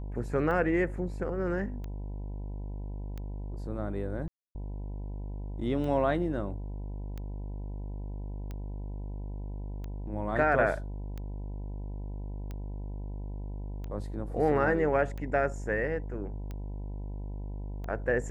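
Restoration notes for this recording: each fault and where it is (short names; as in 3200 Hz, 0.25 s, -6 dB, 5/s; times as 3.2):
buzz 50 Hz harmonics 20 -37 dBFS
tick 45 rpm -27 dBFS
4.28–4.55 gap 0.27 s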